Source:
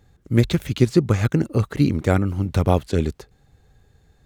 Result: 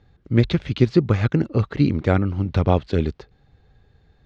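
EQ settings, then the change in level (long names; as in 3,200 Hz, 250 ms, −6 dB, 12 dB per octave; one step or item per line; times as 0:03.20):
low-pass filter 4,700 Hz 24 dB per octave
0.0 dB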